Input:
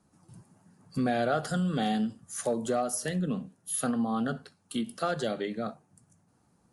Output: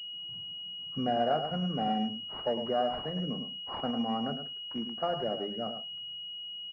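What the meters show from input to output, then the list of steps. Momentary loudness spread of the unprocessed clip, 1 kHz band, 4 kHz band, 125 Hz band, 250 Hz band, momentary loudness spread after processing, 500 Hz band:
8 LU, +1.0 dB, +11.0 dB, -4.5 dB, -4.0 dB, 9 LU, -1.0 dB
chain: dynamic bell 720 Hz, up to +7 dB, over -43 dBFS, Q 1.6; delay 106 ms -8.5 dB; class-D stage that switches slowly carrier 2.9 kHz; trim -5.5 dB

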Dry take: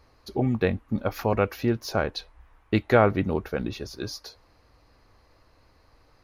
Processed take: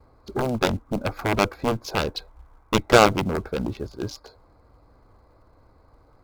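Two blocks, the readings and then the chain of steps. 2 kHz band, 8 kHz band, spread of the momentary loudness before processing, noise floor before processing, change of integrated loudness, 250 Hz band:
+5.0 dB, +10.0 dB, 15 LU, -61 dBFS, +2.5 dB, +0.5 dB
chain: local Wiener filter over 15 samples; gate with hold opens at -54 dBFS; in parallel at -6.5 dB: short-mantissa float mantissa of 2-bit; on the sum: Chebyshev shaper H 6 -23 dB, 7 -10 dB, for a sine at -2.5 dBFS; band-stop 1.8 kHz, Q 6.8

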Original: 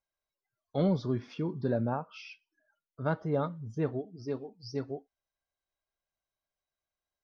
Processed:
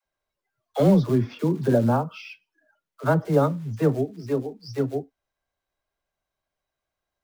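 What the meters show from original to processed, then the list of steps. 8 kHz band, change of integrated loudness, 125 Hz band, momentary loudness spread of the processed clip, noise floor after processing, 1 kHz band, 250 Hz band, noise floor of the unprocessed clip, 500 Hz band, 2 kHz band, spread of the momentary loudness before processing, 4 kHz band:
no reading, +10.0 dB, +10.0 dB, 14 LU, under -85 dBFS, +9.5 dB, +10.0 dB, under -85 dBFS, +10.0 dB, +8.5 dB, 12 LU, +6.0 dB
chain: treble shelf 3.7 kHz -10 dB; in parallel at -5.5 dB: short-mantissa float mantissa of 2-bit; on the sum: phase dispersion lows, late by 58 ms, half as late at 400 Hz; trim +6.5 dB

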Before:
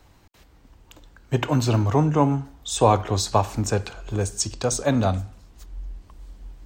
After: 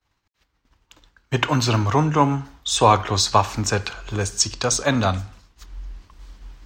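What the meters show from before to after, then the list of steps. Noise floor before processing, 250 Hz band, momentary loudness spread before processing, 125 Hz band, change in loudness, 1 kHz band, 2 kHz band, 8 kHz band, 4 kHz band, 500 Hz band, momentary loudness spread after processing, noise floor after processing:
-54 dBFS, 0.0 dB, 15 LU, 0.0 dB, +2.5 dB, +4.5 dB, +8.0 dB, +5.0 dB, +8.0 dB, 0.0 dB, 11 LU, -72 dBFS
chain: expander -41 dBFS; high-order bell 2.5 kHz +8 dB 3 oct

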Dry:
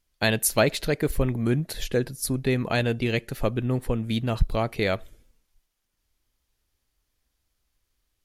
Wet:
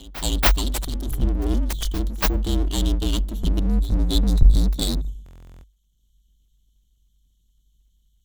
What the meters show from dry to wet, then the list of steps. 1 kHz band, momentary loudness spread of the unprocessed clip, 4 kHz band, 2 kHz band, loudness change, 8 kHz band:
-0.5 dB, 5 LU, +4.0 dB, -4.0 dB, +3.0 dB, -0.5 dB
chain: local Wiener filter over 9 samples; spectral selection erased 3.60–5.08 s, 220–3600 Hz; treble shelf 4.2 kHz +7.5 dB; hum notches 50/100/150/200 Hz; gain riding 2 s; brick-wall FIR band-stop 270–3000 Hz; full-wave rectifier; pre-echo 283 ms -17 dB; frequency shift -49 Hz; buffer glitch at 5.24 s, samples 1024, times 16; trim +5.5 dB

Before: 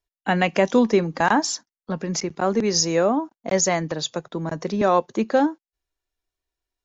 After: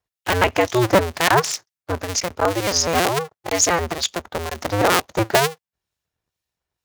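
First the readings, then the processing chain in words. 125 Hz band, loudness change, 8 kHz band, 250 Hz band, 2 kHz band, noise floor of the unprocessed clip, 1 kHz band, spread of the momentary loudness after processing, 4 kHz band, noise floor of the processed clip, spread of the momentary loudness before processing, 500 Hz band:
+3.5 dB, +2.0 dB, no reading, -3.5 dB, +5.0 dB, under -85 dBFS, +3.0 dB, 10 LU, +5.5 dB, under -85 dBFS, 10 LU, +1.0 dB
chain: cycle switcher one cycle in 2, inverted; high-pass 69 Hz; peaking EQ 250 Hz -6.5 dB 1.1 oct; harmonic tremolo 2.1 Hz, depth 50%, crossover 2.1 kHz; trim +5.5 dB

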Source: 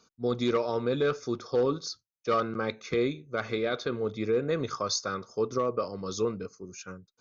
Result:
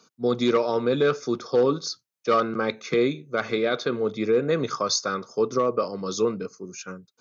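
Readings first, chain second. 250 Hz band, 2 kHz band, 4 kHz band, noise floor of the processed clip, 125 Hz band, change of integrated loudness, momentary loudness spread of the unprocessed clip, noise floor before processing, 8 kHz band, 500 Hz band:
+5.5 dB, +5.5 dB, +5.5 dB, -78 dBFS, +2.5 dB, +5.5 dB, 10 LU, -82 dBFS, no reading, +5.5 dB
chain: high-pass 130 Hz 24 dB/octave; trim +5.5 dB

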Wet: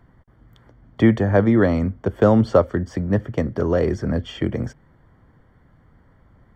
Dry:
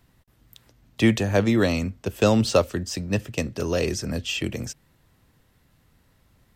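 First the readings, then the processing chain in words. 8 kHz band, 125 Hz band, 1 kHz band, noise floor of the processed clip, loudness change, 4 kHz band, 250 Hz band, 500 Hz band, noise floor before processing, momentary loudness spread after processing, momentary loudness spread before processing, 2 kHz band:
under -15 dB, +5.0 dB, +4.0 dB, -56 dBFS, +4.0 dB, -9.5 dB, +4.5 dB, +4.5 dB, -63 dBFS, 10 LU, 11 LU, -0.5 dB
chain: in parallel at -1.5 dB: compression, threshold -28 dBFS, peak gain reduction 14.5 dB; on the sum: Savitzky-Golay filter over 41 samples; trim +2.5 dB

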